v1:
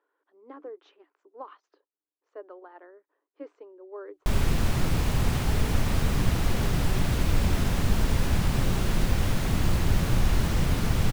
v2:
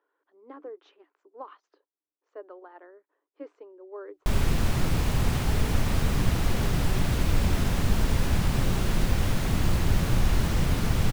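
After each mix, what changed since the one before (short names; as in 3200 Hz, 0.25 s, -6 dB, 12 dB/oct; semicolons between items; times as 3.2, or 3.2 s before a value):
none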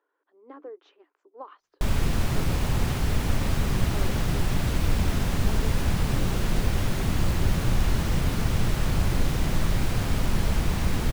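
background: entry -2.45 s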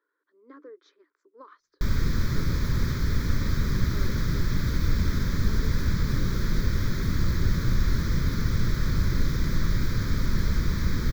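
speech: remove air absorption 120 m; master: add fixed phaser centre 2800 Hz, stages 6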